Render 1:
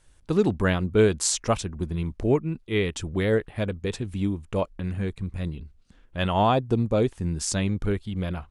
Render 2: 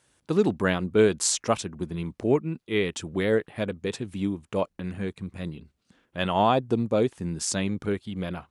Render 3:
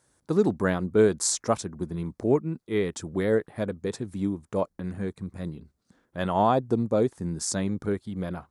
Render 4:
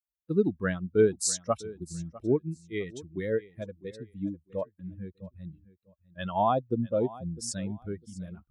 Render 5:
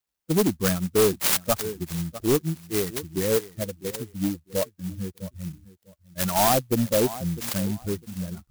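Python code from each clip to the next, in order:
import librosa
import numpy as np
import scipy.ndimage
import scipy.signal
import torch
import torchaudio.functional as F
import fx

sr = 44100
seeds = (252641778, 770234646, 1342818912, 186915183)

y1 = scipy.signal.sosfilt(scipy.signal.butter(2, 150.0, 'highpass', fs=sr, output='sos'), x)
y2 = fx.peak_eq(y1, sr, hz=2800.0, db=-12.5, octaves=0.78)
y3 = fx.bin_expand(y2, sr, power=2.0)
y3 = fx.echo_feedback(y3, sr, ms=652, feedback_pct=21, wet_db=-19)
y4 = 10.0 ** (-23.0 / 20.0) * np.tanh(y3 / 10.0 ** (-23.0 / 20.0))
y4 = fx.lowpass_res(y4, sr, hz=4000.0, q=7.0)
y4 = fx.clock_jitter(y4, sr, seeds[0], jitter_ms=0.12)
y4 = y4 * librosa.db_to_amplitude(8.0)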